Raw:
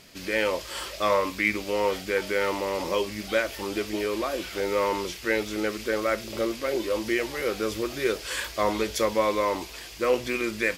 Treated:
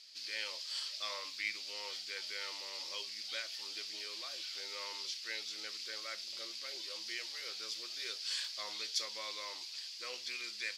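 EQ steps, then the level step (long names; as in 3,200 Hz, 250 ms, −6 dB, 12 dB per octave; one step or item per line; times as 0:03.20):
resonant band-pass 4,600 Hz, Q 3.6
+2.5 dB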